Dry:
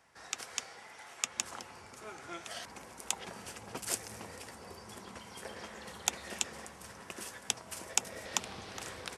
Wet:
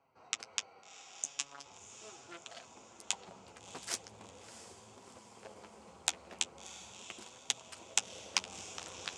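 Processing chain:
adaptive Wiener filter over 25 samples
RIAA equalisation playback
0:00.72–0:01.36: healed spectral selection 720–6,000 Hz before
meter weighting curve ITU-R 468
in parallel at +1.5 dB: speech leveller within 5 dB 2 s
on the sum: flanger 0.4 Hz, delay 7.2 ms, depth 5.2 ms, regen −32%
0:01.25–0:01.66: phases set to zero 141 Hz
feedback delay with all-pass diffusion 681 ms, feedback 53%, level −13 dB
highs frequency-modulated by the lows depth 0.23 ms
level −4.5 dB

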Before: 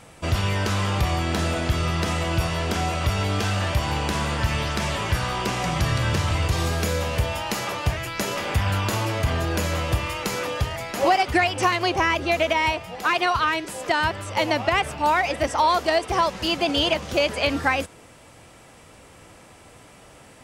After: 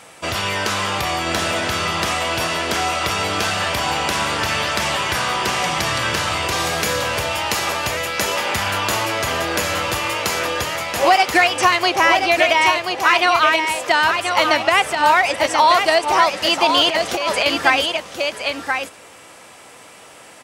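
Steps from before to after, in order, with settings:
single-tap delay 1,031 ms −6 dB
0:16.88–0:17.46: compressor whose output falls as the input rises −24 dBFS, ratio −1
high-pass filter 630 Hz 6 dB per octave
level +7.5 dB

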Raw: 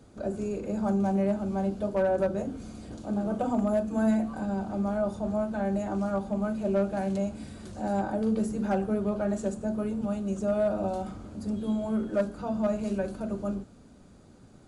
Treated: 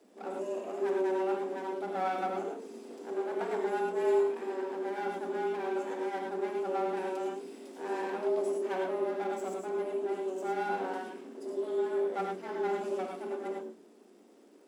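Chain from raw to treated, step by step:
lower of the sound and its delayed copy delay 0.38 ms
frequency shifter +180 Hz
reverb whose tail is shaped and stops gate 130 ms rising, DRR 1 dB
surface crackle 380 per second −56 dBFS
level −7.5 dB

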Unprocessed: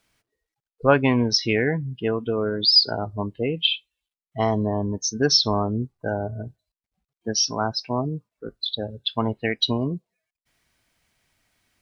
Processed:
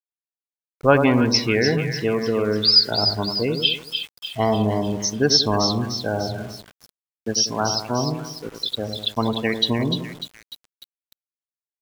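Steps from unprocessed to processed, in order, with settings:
echo with a time of its own for lows and highs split 1,400 Hz, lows 94 ms, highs 298 ms, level −7 dB
centre clipping without the shift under −40 dBFS
level +1.5 dB

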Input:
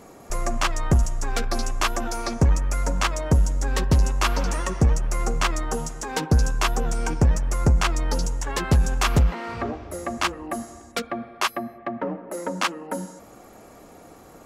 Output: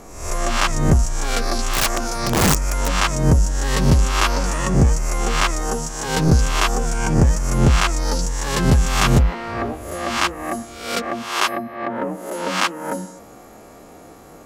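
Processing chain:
peak hold with a rise ahead of every peak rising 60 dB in 0.68 s
0:01.70–0:02.89: wrap-around overflow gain 13.5 dB
level +2 dB

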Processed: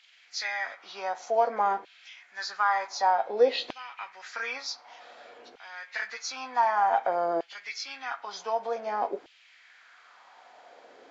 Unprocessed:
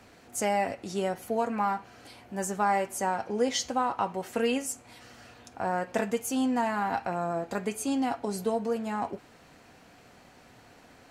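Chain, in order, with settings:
hearing-aid frequency compression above 1,800 Hz 1.5 to 1
auto-filter high-pass saw down 0.54 Hz 380–3,000 Hz

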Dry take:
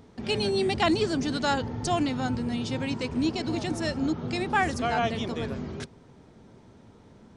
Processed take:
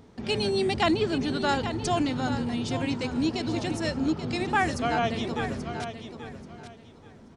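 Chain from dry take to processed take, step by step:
0:00.91–0:01.49: flat-topped bell 7,700 Hz −9 dB
on a send: repeating echo 833 ms, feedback 23%, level −10 dB

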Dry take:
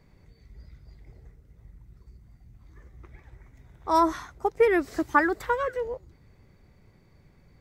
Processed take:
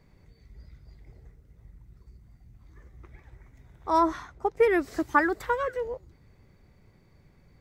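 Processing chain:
0:03.90–0:04.57: low-pass filter 4,000 Hz 6 dB per octave
level −1 dB

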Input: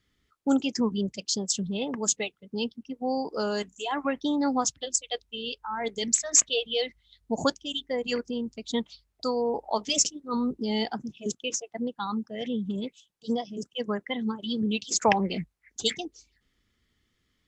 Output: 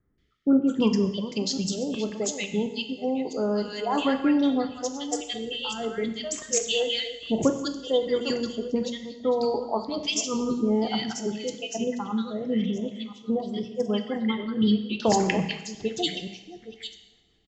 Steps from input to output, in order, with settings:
delay that plays each chunk backwards 525 ms, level −12 dB
0:07.40–0:08.75: graphic EQ with 15 bands 400 Hz +6 dB, 2,500 Hz −7 dB, 6,300 Hz +7 dB
rotating-speaker cabinet horn 0.7 Hz, later 6 Hz, at 0:11.24
high-frequency loss of the air 110 metres
multiband delay without the direct sound lows, highs 180 ms, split 1,400 Hz
coupled-rooms reverb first 0.92 s, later 3.4 s, from −24 dB, DRR 6.5 dB
level +5.5 dB

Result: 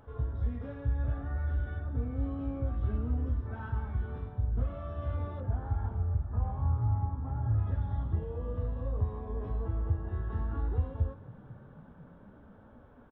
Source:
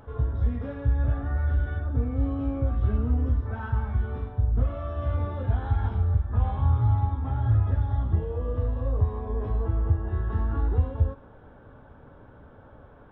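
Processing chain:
0:05.40–0:07.58: low-pass filter 1,400 Hz 12 dB per octave
echo with shifted repeats 492 ms, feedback 63%, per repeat +40 Hz, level −20.5 dB
level −7 dB

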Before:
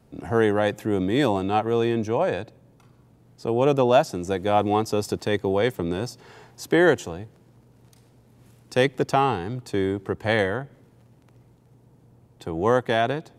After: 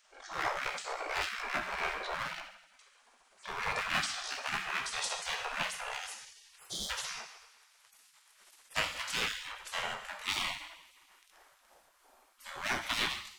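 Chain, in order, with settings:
pitch glide at a constant tempo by −8.5 semitones ending unshifted
asymmetric clip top −25.5 dBFS
healed spectral selection 0:06.60–0:06.88, 300–3,100 Hz before
coupled-rooms reverb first 0.81 s, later 2.1 s, DRR 3.5 dB
gate on every frequency bin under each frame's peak −25 dB weak
hum removal 91.37 Hz, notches 2
every ending faded ahead of time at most 110 dB per second
level +7.5 dB

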